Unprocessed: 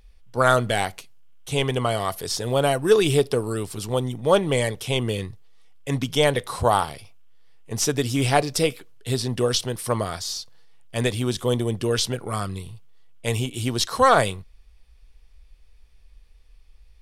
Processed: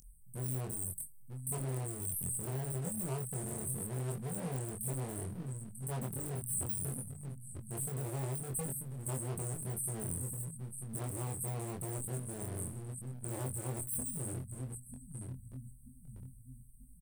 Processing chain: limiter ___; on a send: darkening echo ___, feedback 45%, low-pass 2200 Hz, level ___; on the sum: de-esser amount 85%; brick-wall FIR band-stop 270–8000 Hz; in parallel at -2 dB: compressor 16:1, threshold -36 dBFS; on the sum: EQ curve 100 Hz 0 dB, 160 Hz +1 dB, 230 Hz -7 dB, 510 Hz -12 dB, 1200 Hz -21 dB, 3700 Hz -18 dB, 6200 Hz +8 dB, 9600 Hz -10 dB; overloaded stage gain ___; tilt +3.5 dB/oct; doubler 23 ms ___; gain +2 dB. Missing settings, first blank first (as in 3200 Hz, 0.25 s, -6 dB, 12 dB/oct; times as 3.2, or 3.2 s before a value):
-14.5 dBFS, 0.939 s, -9.5 dB, 32 dB, -3 dB